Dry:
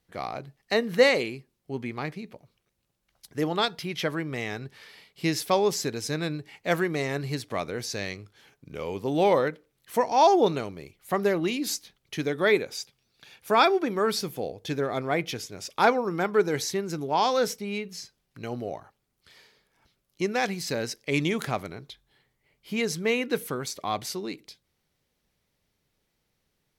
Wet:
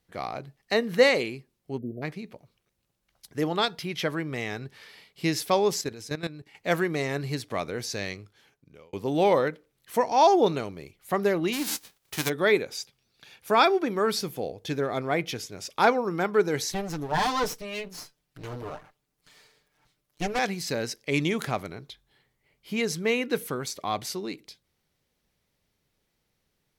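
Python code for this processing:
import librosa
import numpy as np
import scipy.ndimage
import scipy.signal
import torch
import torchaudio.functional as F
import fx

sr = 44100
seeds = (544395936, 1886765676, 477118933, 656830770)

y = fx.spec_erase(x, sr, start_s=1.78, length_s=0.25, low_hz=700.0, high_hz=11000.0)
y = fx.level_steps(y, sr, step_db=14, at=(5.81, 6.55))
y = fx.envelope_flatten(y, sr, power=0.3, at=(11.52, 12.28), fade=0.02)
y = fx.lower_of_two(y, sr, delay_ms=6.7, at=(16.72, 20.39))
y = fx.edit(y, sr, fx.fade_out_span(start_s=8.11, length_s=0.82), tone=tone)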